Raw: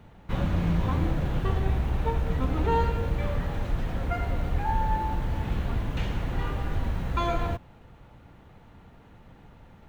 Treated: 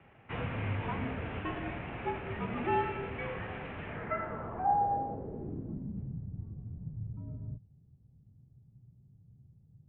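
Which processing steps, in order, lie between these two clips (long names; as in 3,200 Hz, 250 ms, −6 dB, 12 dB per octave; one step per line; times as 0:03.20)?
single-sideband voice off tune −68 Hz 160–3,300 Hz
low-pass filter sweep 2,500 Hz → 130 Hz, 0:03.84–0:06.31
level −5 dB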